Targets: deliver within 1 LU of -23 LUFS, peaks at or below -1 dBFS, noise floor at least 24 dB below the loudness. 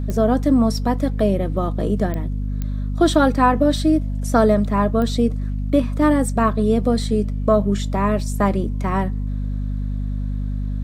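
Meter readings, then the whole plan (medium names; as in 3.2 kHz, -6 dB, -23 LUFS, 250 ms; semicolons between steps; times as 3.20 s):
clicks found 4; hum 50 Hz; highest harmonic 250 Hz; hum level -21 dBFS; loudness -20.0 LUFS; peak level -2.0 dBFS; loudness target -23.0 LUFS
-> de-click; hum notches 50/100/150/200/250 Hz; trim -3 dB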